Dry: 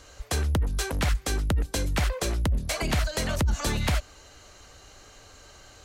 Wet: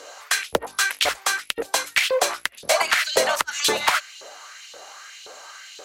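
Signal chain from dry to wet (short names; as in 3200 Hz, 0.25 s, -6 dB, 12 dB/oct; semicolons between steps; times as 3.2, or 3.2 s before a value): LFO high-pass saw up 1.9 Hz 440–3400 Hz; one-sided clip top -18 dBFS; gain +8.5 dB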